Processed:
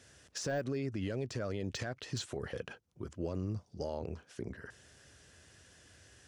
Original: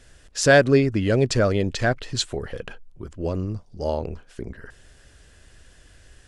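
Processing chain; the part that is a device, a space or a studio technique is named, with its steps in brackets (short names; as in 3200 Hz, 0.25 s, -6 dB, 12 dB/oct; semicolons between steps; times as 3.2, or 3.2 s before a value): broadcast voice chain (HPF 79 Hz 24 dB/oct; de-esser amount 70%; compressor 4:1, threshold -25 dBFS, peak gain reduction 11.5 dB; bell 5900 Hz +5 dB 0.39 oct; limiter -21.5 dBFS, peak gain reduction 9 dB); gain -5.5 dB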